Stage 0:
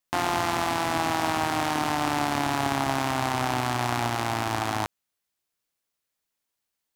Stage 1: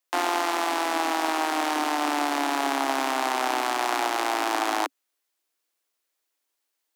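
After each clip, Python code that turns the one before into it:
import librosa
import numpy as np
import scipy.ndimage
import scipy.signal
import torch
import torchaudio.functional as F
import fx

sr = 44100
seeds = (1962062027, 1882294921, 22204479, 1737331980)

y = scipy.signal.sosfilt(scipy.signal.butter(16, 270.0, 'highpass', fs=sr, output='sos'), x)
y = fx.rider(y, sr, range_db=10, speed_s=0.5)
y = F.gain(torch.from_numpy(y), 1.5).numpy()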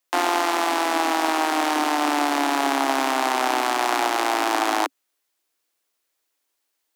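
y = fx.low_shelf(x, sr, hz=150.0, db=5.5)
y = F.gain(torch.from_numpy(y), 3.5).numpy()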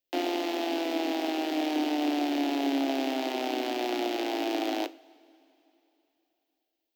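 y = fx.curve_eq(x, sr, hz=(290.0, 660.0, 1100.0, 2900.0, 5000.0, 9900.0, 15000.0), db=(0, -5, -23, -5, -9, -22, -6))
y = fx.rev_double_slope(y, sr, seeds[0], early_s=0.32, late_s=3.3, knee_db=-20, drr_db=12.5)
y = F.gain(torch.from_numpy(y), -1.0).numpy()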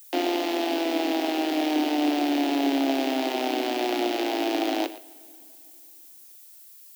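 y = fx.dmg_noise_colour(x, sr, seeds[1], colour='violet', level_db=-53.0)
y = y + 10.0 ** (-16.0 / 20.0) * np.pad(y, (int(117 * sr / 1000.0), 0))[:len(y)]
y = F.gain(torch.from_numpy(y), 4.0).numpy()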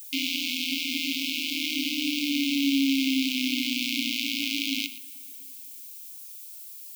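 y = fx.brickwall_bandstop(x, sr, low_hz=280.0, high_hz=2100.0)
y = F.gain(torch.from_numpy(y), 6.0).numpy()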